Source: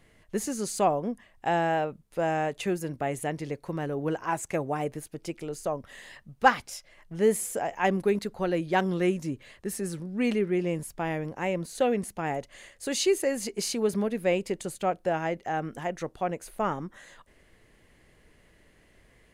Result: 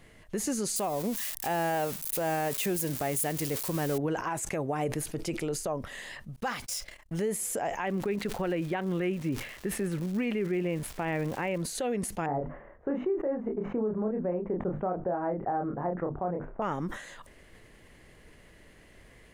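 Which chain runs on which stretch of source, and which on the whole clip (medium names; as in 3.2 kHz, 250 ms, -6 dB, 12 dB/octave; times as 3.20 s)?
0.76–3.98 s: zero-crossing glitches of -28 dBFS + treble shelf 10 kHz +4.5 dB
6.36–7.22 s: median filter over 3 samples + gate -53 dBFS, range -39 dB + treble shelf 5.4 kHz +11 dB
7.83–11.61 s: resonant high shelf 3.7 kHz -10.5 dB, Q 1.5 + crackle 470 per s -42 dBFS
12.26–16.62 s: inverse Chebyshev low-pass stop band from 4.2 kHz, stop band 60 dB + hum notches 50/100/150/200/250/300 Hz + doubling 28 ms -4 dB
whole clip: compression, threshold -30 dBFS; peak limiter -26.5 dBFS; decay stretcher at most 86 dB/s; trim +4.5 dB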